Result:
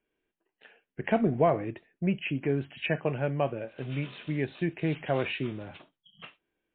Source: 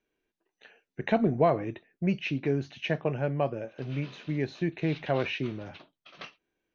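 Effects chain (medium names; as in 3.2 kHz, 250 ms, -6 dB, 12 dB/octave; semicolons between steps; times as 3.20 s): 2.49–4.66 s: treble shelf 2.2 kHz +5.5 dB; 6.01–6.23 s: spectral selection erased 220–2900 Hz; MP3 24 kbps 8 kHz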